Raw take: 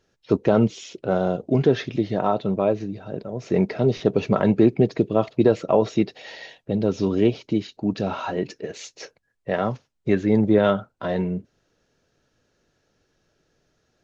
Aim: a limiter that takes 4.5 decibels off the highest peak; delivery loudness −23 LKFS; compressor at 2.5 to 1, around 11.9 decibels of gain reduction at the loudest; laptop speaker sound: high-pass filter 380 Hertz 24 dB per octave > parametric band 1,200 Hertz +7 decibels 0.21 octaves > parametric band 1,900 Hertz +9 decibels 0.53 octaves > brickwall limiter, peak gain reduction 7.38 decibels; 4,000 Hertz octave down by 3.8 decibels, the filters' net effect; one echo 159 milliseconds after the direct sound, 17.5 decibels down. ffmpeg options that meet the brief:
ffmpeg -i in.wav -af "equalizer=frequency=4000:width_type=o:gain=-6,acompressor=threshold=-31dB:ratio=2.5,alimiter=limit=-20.5dB:level=0:latency=1,highpass=frequency=380:width=0.5412,highpass=frequency=380:width=1.3066,equalizer=frequency=1200:width_type=o:width=0.21:gain=7,equalizer=frequency=1900:width_type=o:width=0.53:gain=9,aecho=1:1:159:0.133,volume=15.5dB,alimiter=limit=-11dB:level=0:latency=1" out.wav

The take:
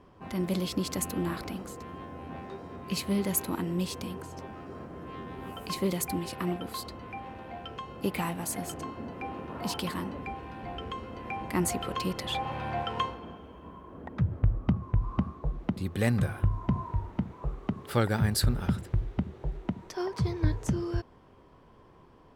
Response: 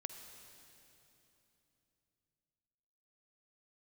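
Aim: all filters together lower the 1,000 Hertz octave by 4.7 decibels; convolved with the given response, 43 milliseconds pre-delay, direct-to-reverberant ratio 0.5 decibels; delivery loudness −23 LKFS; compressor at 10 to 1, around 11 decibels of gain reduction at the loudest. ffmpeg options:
-filter_complex "[0:a]equalizer=frequency=1000:width_type=o:gain=-6,acompressor=threshold=-31dB:ratio=10,asplit=2[link_01][link_02];[1:a]atrim=start_sample=2205,adelay=43[link_03];[link_02][link_03]afir=irnorm=-1:irlink=0,volume=2dB[link_04];[link_01][link_04]amix=inputs=2:normalize=0,volume=13dB"

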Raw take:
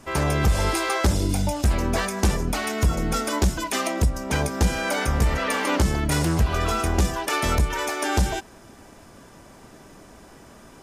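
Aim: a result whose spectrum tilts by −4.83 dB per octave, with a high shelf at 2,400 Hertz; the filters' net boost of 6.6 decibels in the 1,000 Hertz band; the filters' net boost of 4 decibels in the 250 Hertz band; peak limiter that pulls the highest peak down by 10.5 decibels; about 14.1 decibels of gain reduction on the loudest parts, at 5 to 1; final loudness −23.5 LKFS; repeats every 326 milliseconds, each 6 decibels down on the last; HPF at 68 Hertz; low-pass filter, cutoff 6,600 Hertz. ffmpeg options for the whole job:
ffmpeg -i in.wav -af "highpass=68,lowpass=6600,equalizer=frequency=250:width_type=o:gain=5,equalizer=frequency=1000:width_type=o:gain=7.5,highshelf=frequency=2400:gain=3,acompressor=threshold=-31dB:ratio=5,alimiter=level_in=3dB:limit=-24dB:level=0:latency=1,volume=-3dB,aecho=1:1:326|652|978|1304|1630|1956:0.501|0.251|0.125|0.0626|0.0313|0.0157,volume=12dB" out.wav

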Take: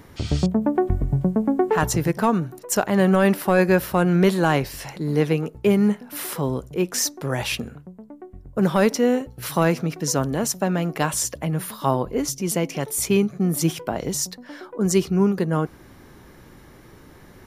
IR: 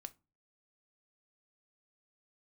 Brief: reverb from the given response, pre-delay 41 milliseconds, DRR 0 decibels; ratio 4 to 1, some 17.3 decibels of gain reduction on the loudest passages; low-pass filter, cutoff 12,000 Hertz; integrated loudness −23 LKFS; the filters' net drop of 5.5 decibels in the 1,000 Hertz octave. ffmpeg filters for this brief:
-filter_complex "[0:a]lowpass=12000,equalizer=frequency=1000:width_type=o:gain=-7.5,acompressor=threshold=-35dB:ratio=4,asplit=2[link_01][link_02];[1:a]atrim=start_sample=2205,adelay=41[link_03];[link_02][link_03]afir=irnorm=-1:irlink=0,volume=5.5dB[link_04];[link_01][link_04]amix=inputs=2:normalize=0,volume=10.5dB"

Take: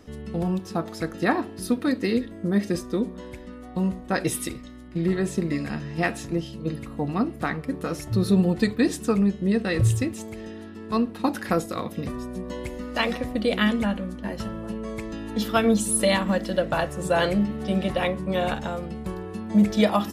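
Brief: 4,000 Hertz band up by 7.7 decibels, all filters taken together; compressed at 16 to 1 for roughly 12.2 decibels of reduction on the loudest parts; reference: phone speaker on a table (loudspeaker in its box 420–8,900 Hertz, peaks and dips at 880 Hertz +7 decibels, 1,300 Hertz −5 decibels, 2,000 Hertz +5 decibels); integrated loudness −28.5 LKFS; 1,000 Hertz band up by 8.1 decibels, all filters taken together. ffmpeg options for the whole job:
ffmpeg -i in.wav -af "equalizer=frequency=1000:width_type=o:gain=6.5,equalizer=frequency=4000:width_type=o:gain=9,acompressor=threshold=-25dB:ratio=16,highpass=frequency=420:width=0.5412,highpass=frequency=420:width=1.3066,equalizer=frequency=880:width_type=q:width=4:gain=7,equalizer=frequency=1300:width_type=q:width=4:gain=-5,equalizer=frequency=2000:width_type=q:width=4:gain=5,lowpass=frequency=8900:width=0.5412,lowpass=frequency=8900:width=1.3066,volume=4.5dB" out.wav

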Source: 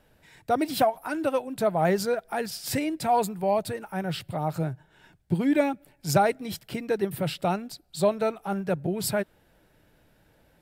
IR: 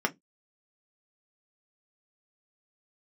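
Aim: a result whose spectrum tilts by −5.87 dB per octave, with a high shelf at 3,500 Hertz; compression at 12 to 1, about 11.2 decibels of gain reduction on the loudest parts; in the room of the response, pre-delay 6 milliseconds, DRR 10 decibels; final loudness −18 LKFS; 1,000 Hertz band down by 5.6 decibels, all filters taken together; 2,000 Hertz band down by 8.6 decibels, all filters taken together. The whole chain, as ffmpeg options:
-filter_complex "[0:a]equalizer=frequency=1000:width_type=o:gain=-7,equalizer=frequency=2000:width_type=o:gain=-7,highshelf=frequency=3500:gain=-6.5,acompressor=threshold=-30dB:ratio=12,asplit=2[link_01][link_02];[1:a]atrim=start_sample=2205,adelay=6[link_03];[link_02][link_03]afir=irnorm=-1:irlink=0,volume=-19.5dB[link_04];[link_01][link_04]amix=inputs=2:normalize=0,volume=17.5dB"

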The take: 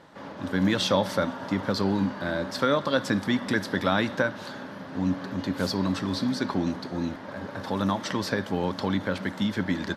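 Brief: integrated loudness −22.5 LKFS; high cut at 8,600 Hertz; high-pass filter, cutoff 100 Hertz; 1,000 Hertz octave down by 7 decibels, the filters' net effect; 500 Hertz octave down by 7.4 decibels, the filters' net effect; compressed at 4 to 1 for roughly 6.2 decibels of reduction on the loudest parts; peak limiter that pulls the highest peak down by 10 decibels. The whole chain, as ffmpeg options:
ffmpeg -i in.wav -af "highpass=100,lowpass=8600,equalizer=frequency=500:width_type=o:gain=-7,equalizer=frequency=1000:width_type=o:gain=-7.5,acompressor=threshold=-29dB:ratio=4,volume=15dB,alimiter=limit=-12.5dB:level=0:latency=1" out.wav

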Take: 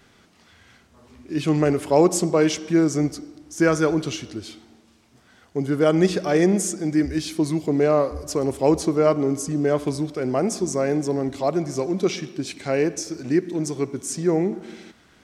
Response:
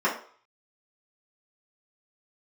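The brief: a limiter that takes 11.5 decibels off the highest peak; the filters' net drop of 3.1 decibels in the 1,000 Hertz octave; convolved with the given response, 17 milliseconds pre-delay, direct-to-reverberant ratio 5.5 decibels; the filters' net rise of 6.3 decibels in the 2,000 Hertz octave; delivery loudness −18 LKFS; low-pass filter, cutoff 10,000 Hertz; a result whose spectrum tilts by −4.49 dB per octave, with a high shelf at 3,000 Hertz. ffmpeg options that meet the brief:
-filter_complex "[0:a]lowpass=10000,equalizer=frequency=1000:width_type=o:gain=-8,equalizer=frequency=2000:width_type=o:gain=9,highshelf=frequency=3000:gain=4.5,alimiter=limit=-15.5dB:level=0:latency=1,asplit=2[link_01][link_02];[1:a]atrim=start_sample=2205,adelay=17[link_03];[link_02][link_03]afir=irnorm=-1:irlink=0,volume=-20dB[link_04];[link_01][link_04]amix=inputs=2:normalize=0,volume=7dB"

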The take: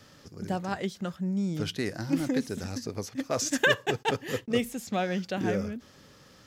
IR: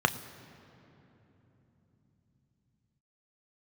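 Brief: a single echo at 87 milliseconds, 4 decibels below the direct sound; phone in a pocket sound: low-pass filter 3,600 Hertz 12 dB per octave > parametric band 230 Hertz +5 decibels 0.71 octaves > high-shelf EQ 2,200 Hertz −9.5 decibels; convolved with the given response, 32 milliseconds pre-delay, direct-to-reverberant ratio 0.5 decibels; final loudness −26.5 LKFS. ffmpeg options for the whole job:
-filter_complex "[0:a]aecho=1:1:87:0.631,asplit=2[link_01][link_02];[1:a]atrim=start_sample=2205,adelay=32[link_03];[link_02][link_03]afir=irnorm=-1:irlink=0,volume=-13dB[link_04];[link_01][link_04]amix=inputs=2:normalize=0,lowpass=3600,equalizer=frequency=230:width_type=o:width=0.71:gain=5,highshelf=frequency=2200:gain=-9.5,volume=-1.5dB"

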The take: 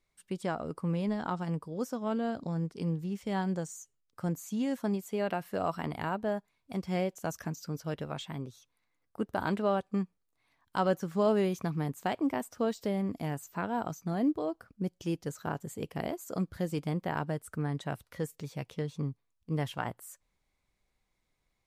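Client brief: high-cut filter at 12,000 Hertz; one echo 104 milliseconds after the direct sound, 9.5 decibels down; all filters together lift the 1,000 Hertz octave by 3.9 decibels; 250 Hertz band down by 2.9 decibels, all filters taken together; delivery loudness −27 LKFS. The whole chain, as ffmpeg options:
ffmpeg -i in.wav -af "lowpass=12000,equalizer=frequency=250:width_type=o:gain=-4.5,equalizer=frequency=1000:width_type=o:gain=5.5,aecho=1:1:104:0.335,volume=7dB" out.wav

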